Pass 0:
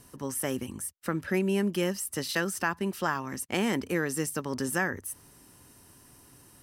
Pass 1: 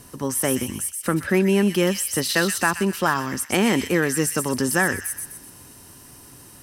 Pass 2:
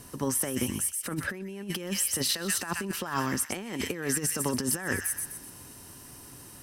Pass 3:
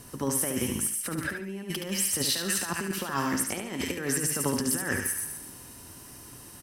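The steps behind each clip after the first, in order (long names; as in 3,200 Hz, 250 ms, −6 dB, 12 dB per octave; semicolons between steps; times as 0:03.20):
delay with a high-pass on its return 126 ms, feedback 42%, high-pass 2,700 Hz, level −4 dB; harmonic generator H 5 −29 dB, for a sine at −12.5 dBFS; level +7.5 dB
compressor whose output falls as the input rises −24 dBFS, ratio −0.5; level −5.5 dB
repeating echo 72 ms, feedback 30%, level −6 dB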